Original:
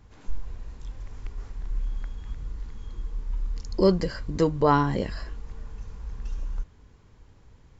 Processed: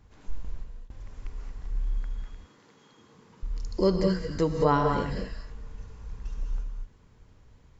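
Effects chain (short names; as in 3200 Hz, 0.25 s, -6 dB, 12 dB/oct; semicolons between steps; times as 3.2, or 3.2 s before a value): 0.43–0.97 gate with hold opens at -28 dBFS; 2.24–3.43 spectral gate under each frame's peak -25 dB weak; non-linear reverb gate 0.25 s rising, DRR 3.5 dB; gain -3.5 dB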